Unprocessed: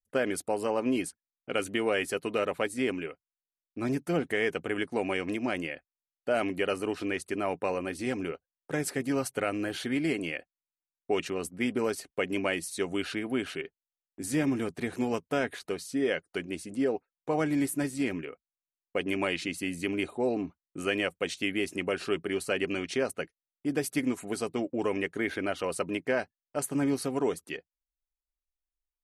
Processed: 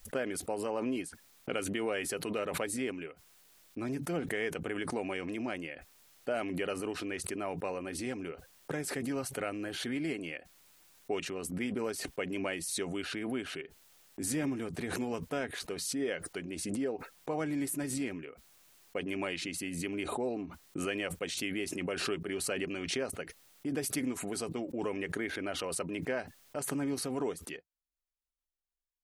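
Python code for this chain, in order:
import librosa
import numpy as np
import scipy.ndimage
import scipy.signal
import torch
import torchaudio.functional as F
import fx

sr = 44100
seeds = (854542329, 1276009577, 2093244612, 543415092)

y = fx.pre_swell(x, sr, db_per_s=35.0)
y = F.gain(torch.from_numpy(y), -6.5).numpy()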